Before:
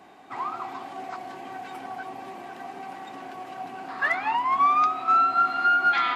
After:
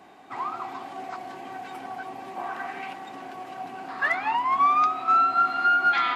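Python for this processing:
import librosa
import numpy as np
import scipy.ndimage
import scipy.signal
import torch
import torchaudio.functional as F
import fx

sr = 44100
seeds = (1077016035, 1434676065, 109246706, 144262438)

y = fx.peak_eq(x, sr, hz=fx.line((2.36, 850.0), (2.92, 2800.0)), db=12.5, octaves=1.2, at=(2.36, 2.92), fade=0.02)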